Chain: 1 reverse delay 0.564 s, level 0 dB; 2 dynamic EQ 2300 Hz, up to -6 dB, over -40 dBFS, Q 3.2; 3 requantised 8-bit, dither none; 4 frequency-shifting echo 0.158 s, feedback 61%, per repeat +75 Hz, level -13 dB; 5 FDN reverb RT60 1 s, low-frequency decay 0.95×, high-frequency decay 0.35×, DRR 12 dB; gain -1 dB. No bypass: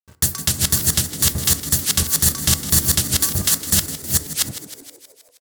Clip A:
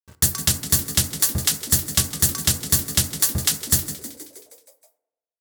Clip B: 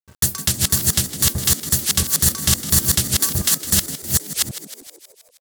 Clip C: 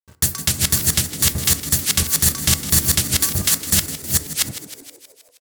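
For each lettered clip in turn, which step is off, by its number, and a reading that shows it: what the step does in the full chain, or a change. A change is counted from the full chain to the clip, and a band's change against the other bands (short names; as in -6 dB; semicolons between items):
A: 1, crest factor change +1.5 dB; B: 5, echo-to-direct -8.0 dB to -11.0 dB; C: 2, 2 kHz band +2.5 dB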